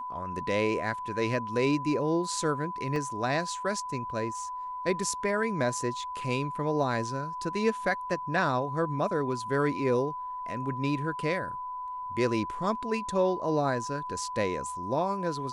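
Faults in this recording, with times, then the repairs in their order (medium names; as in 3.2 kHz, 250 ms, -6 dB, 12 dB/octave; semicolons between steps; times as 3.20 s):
whine 1 kHz -34 dBFS
2.96 s: dropout 2.4 ms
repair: band-stop 1 kHz, Q 30; interpolate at 2.96 s, 2.4 ms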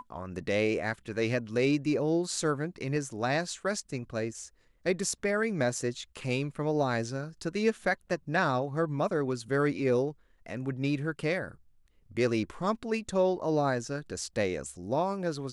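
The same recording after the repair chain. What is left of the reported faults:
nothing left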